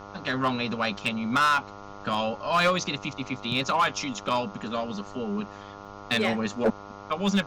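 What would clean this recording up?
clip repair -17 dBFS; de-hum 100.7 Hz, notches 14; interpolate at 2.14/5.85 s, 2.8 ms; expander -35 dBFS, range -21 dB

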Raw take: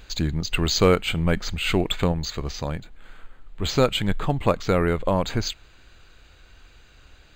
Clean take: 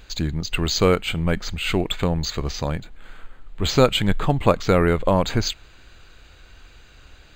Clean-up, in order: clip repair -8 dBFS; trim 0 dB, from 2.12 s +3.5 dB

